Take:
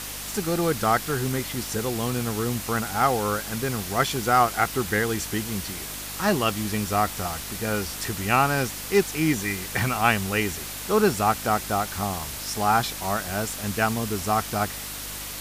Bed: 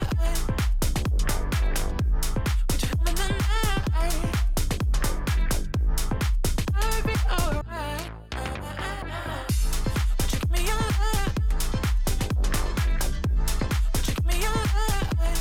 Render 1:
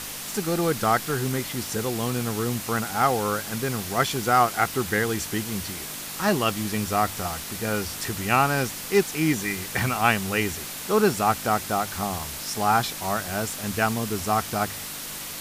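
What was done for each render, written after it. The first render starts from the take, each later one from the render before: de-hum 50 Hz, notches 2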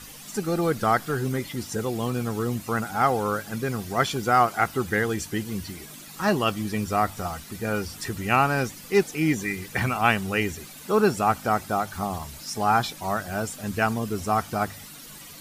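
noise reduction 12 dB, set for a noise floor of -35 dBFS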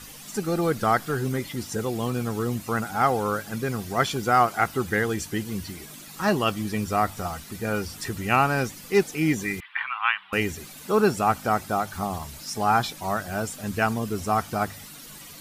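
9.60–10.33 s: elliptic band-pass 990–3300 Hz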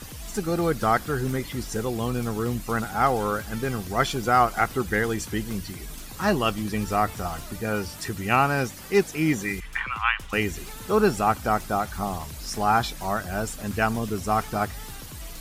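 add bed -16.5 dB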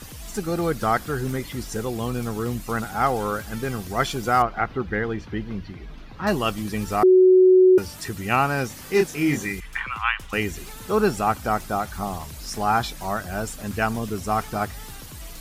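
4.42–6.27 s: distance through air 290 m; 7.03–7.78 s: bleep 371 Hz -10 dBFS; 8.67–9.48 s: doubling 28 ms -4 dB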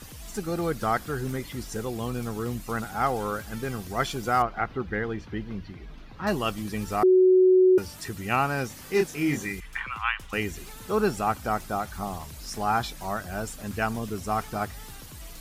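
trim -4 dB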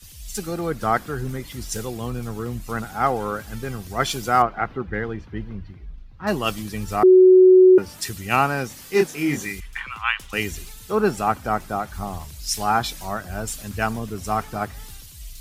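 in parallel at +1.5 dB: compression, threshold -31 dBFS, peak gain reduction 13.5 dB; on the sum: three bands expanded up and down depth 100%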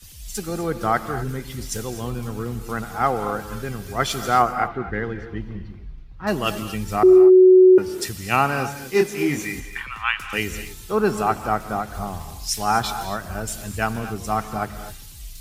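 gated-style reverb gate 280 ms rising, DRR 10 dB

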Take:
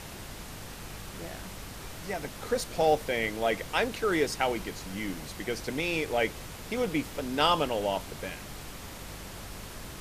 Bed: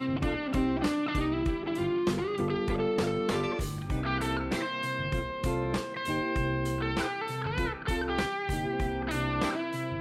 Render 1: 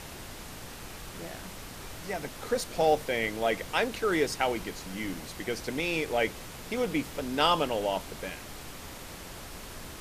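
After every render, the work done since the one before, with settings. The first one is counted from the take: de-hum 50 Hz, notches 4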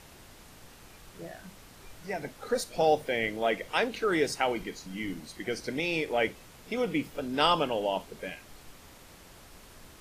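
noise print and reduce 9 dB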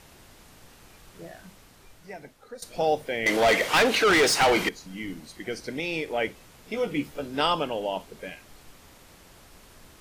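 1.40–2.62 s: fade out, to -15.5 dB; 3.26–4.69 s: overdrive pedal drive 27 dB, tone 6.9 kHz, clips at -12.5 dBFS; 6.72–7.41 s: doubling 14 ms -5 dB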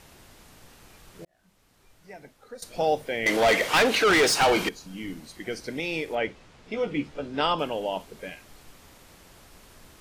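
1.25–2.60 s: fade in linear; 4.32–5.05 s: band-stop 2 kHz, Q 7.4; 6.15–7.59 s: distance through air 88 m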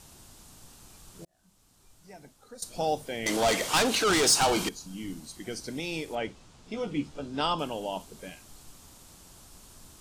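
ten-band graphic EQ 500 Hz -6 dB, 2 kHz -9 dB, 8 kHz +6 dB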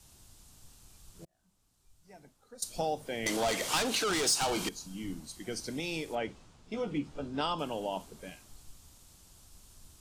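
compression 4:1, threshold -30 dBFS, peak gain reduction 10 dB; three bands expanded up and down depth 40%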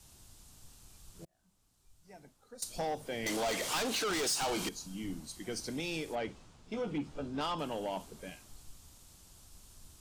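saturation -28.5 dBFS, distortion -13 dB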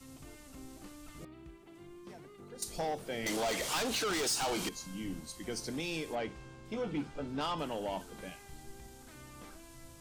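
add bed -23 dB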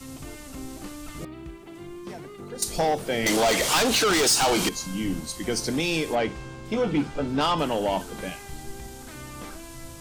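trim +12 dB

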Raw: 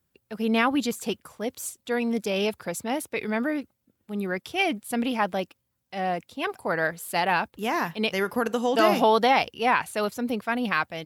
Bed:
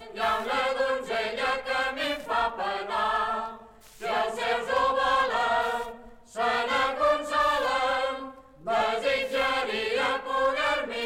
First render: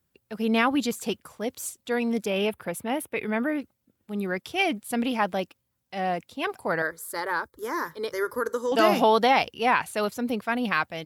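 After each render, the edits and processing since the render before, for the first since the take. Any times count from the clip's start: 2.26–3.60 s: high-order bell 5.6 kHz -10 dB 1.2 oct; 6.82–8.72 s: static phaser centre 730 Hz, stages 6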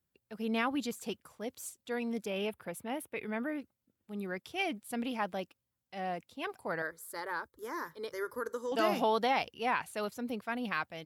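trim -9.5 dB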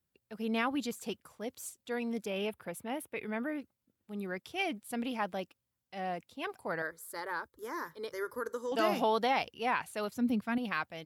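10.14–10.58 s: resonant low shelf 310 Hz +7.5 dB, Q 1.5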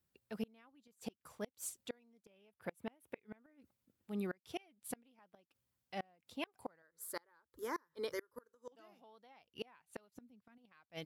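inverted gate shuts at -29 dBFS, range -33 dB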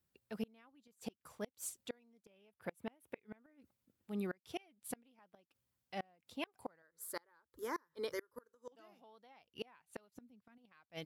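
no audible change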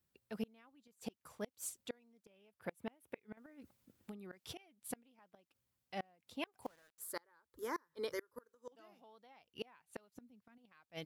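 3.37–4.58 s: compressor with a negative ratio -49 dBFS; 6.62–7.03 s: companded quantiser 6-bit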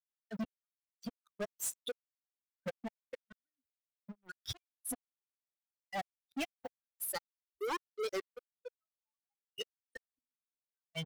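expander on every frequency bin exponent 3; waveshaping leveller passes 5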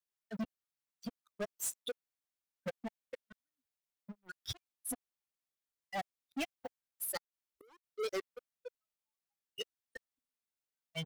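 7.17–7.84 s: inverted gate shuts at -44 dBFS, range -28 dB

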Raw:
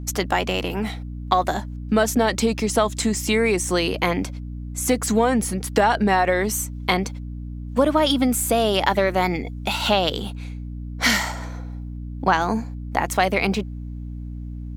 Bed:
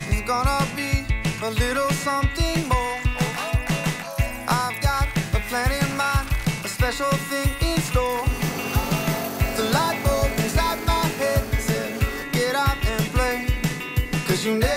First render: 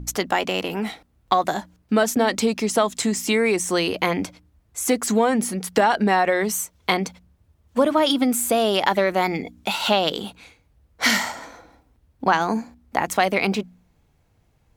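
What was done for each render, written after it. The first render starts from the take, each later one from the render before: de-hum 60 Hz, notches 5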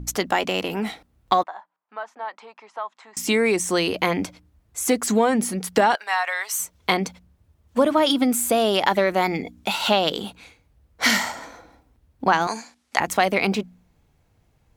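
1.43–3.17 s: ladder band-pass 1.1 kHz, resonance 50%; 5.95–6.60 s: high-pass 880 Hz 24 dB/octave; 12.47–13.00 s: frequency weighting ITU-R 468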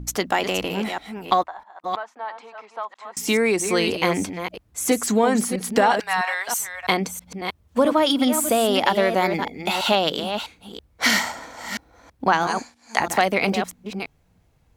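chunks repeated in reverse 327 ms, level -8 dB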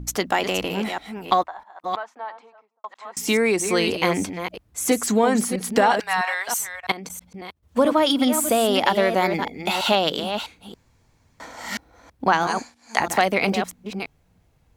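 2.08–2.84 s: studio fade out; 6.76–7.63 s: level held to a coarse grid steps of 18 dB; 10.74–11.40 s: room tone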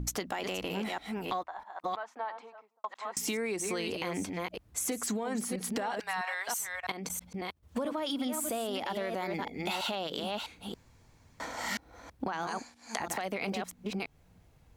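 peak limiter -13 dBFS, peak gain reduction 10.5 dB; compression 5:1, threshold -32 dBFS, peak gain reduction 13 dB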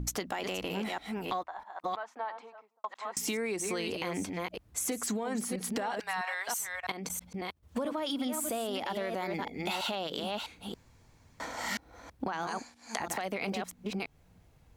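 no audible change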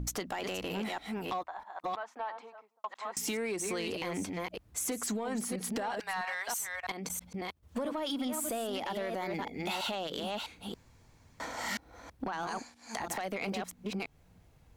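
saturation -25.5 dBFS, distortion -19 dB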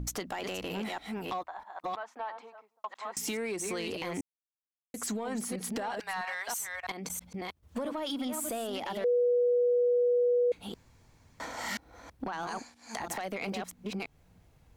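4.21–4.94 s: mute; 9.04–10.52 s: bleep 487 Hz -22.5 dBFS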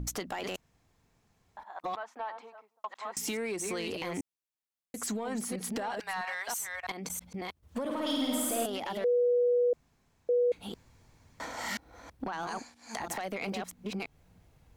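0.56–1.57 s: room tone; 7.84–8.66 s: flutter echo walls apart 8.9 m, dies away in 1.4 s; 9.73–10.29 s: room tone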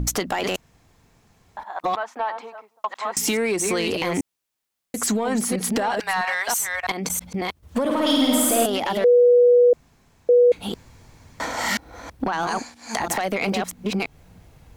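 trim +12 dB

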